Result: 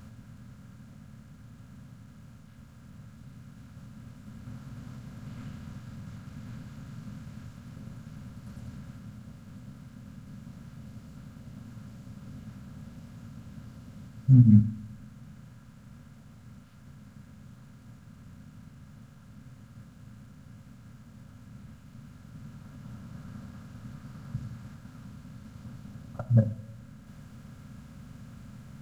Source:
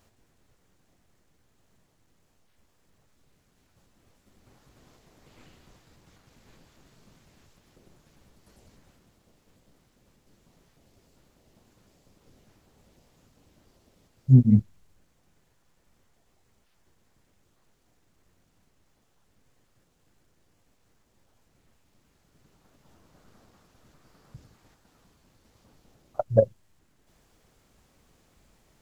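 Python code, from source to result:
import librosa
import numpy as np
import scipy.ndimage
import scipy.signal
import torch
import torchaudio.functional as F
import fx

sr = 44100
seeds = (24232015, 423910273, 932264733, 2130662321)

y = fx.bin_compress(x, sr, power=0.6)
y = fx.band_shelf(y, sr, hz=510.0, db=-15.5, octaves=1.7)
y = fx.rev_double_slope(y, sr, seeds[0], early_s=0.62, late_s=2.2, knee_db=-18, drr_db=10.0)
y = y * librosa.db_to_amplitude(-1.0)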